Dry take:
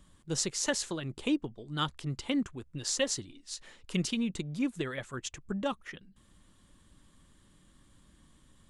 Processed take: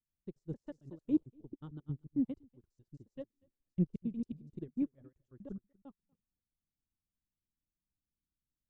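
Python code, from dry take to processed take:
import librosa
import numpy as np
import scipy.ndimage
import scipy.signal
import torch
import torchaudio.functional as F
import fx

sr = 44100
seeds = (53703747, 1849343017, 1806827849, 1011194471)

p1 = fx.block_reorder(x, sr, ms=90.0, group=3)
p2 = fx.curve_eq(p1, sr, hz=(100.0, 350.0, 2500.0), db=(0, -4, -29))
p3 = p2 + fx.echo_single(p2, sr, ms=240, db=-12.5, dry=0)
p4 = fx.upward_expand(p3, sr, threshold_db=-53.0, expansion=2.5)
y = p4 * 10.0 ** (5.0 / 20.0)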